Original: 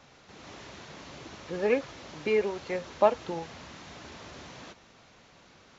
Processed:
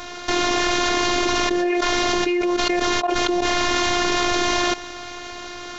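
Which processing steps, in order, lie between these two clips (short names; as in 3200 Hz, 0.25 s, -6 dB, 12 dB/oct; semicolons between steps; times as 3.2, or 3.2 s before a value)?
level quantiser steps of 18 dB; robotiser 353 Hz; fast leveller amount 100%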